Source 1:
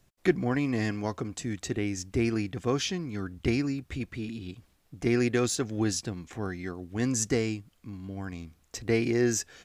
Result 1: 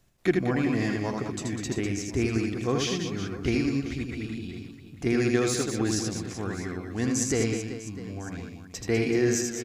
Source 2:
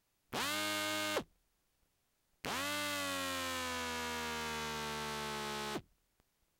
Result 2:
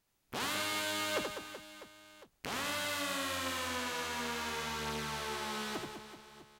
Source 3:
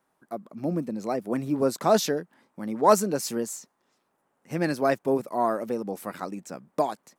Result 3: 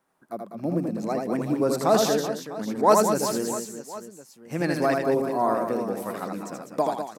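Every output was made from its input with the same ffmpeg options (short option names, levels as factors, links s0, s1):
-af "aecho=1:1:80|200|380|650|1055:0.631|0.398|0.251|0.158|0.1"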